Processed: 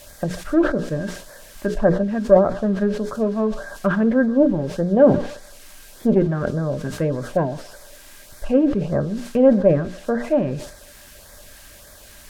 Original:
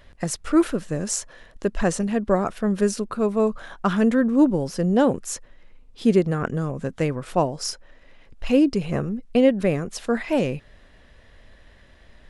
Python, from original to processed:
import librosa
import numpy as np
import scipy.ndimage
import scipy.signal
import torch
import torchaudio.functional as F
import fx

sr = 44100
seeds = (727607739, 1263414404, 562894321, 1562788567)

p1 = fx.diode_clip(x, sr, knee_db=-11.0)
p2 = fx.air_absorb(p1, sr, metres=480.0)
p3 = fx.hum_notches(p2, sr, base_hz=60, count=8)
p4 = fx.quant_dither(p3, sr, seeds[0], bits=6, dither='triangular')
p5 = p3 + F.gain(torch.from_numpy(p4), -8.5).numpy()
p6 = fx.filter_lfo_notch(p5, sr, shape='sine', hz=1.7, low_hz=470.0, high_hz=2900.0, q=2.0)
p7 = p6 + fx.echo_banded(p6, sr, ms=140, feedback_pct=46, hz=1300.0, wet_db=-19, dry=0)
p8 = fx.dynamic_eq(p7, sr, hz=2300.0, q=1.4, threshold_db=-47.0, ratio=4.0, max_db=-6)
p9 = fx.small_body(p8, sr, hz=(590.0, 1600.0), ring_ms=70, db=14)
p10 = fx.env_lowpass_down(p9, sr, base_hz=2800.0, full_db=-15.5)
y = fx.sustainer(p10, sr, db_per_s=91.0)